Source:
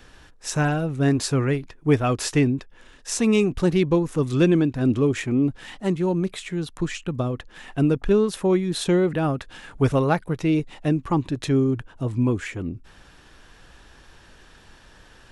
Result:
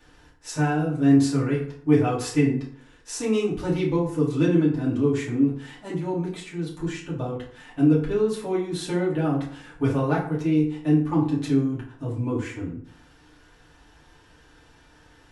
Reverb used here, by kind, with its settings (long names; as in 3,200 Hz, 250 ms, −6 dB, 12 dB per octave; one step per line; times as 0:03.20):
feedback delay network reverb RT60 0.58 s, low-frequency decay 1×, high-frequency decay 0.6×, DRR −7 dB
level −11.5 dB